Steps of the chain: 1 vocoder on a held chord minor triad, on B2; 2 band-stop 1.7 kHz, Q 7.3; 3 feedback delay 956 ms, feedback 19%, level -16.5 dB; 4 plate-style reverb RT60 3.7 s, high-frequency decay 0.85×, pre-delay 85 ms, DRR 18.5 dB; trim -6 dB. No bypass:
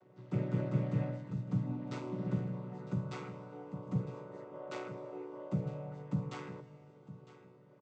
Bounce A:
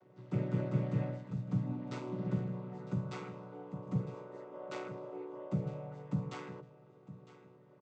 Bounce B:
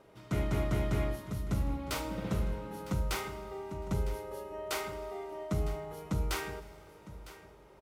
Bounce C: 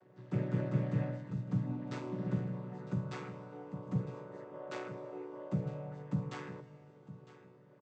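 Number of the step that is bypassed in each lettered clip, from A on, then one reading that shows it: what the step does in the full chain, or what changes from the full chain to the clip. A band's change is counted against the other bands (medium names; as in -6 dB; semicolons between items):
4, echo-to-direct -14.0 dB to -16.5 dB; 1, 4 kHz band +9.5 dB; 2, 2 kHz band +1.5 dB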